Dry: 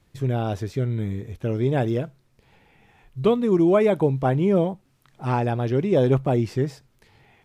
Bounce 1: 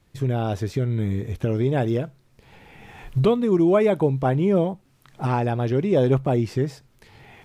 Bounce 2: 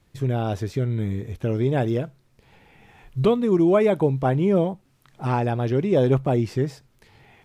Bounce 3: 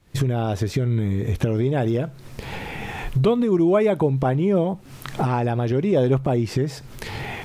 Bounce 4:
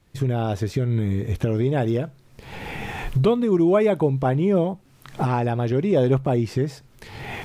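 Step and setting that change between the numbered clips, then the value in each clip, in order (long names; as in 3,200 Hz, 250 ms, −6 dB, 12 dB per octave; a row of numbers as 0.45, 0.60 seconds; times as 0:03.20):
camcorder AGC, rising by: 13, 5.2, 87, 35 dB per second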